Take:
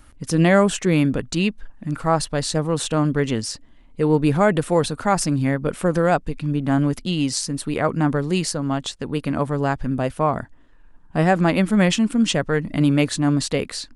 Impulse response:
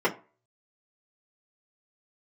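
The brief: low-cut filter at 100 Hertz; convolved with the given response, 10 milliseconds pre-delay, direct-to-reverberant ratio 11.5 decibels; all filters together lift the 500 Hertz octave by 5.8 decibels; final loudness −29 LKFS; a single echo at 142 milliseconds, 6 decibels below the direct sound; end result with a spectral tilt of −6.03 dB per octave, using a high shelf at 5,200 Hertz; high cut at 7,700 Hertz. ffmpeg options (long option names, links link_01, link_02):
-filter_complex "[0:a]highpass=100,lowpass=7700,equalizer=frequency=500:width_type=o:gain=7,highshelf=frequency=5200:gain=-4.5,aecho=1:1:142:0.501,asplit=2[link_01][link_02];[1:a]atrim=start_sample=2205,adelay=10[link_03];[link_02][link_03]afir=irnorm=-1:irlink=0,volume=-25.5dB[link_04];[link_01][link_04]amix=inputs=2:normalize=0,volume=-12dB"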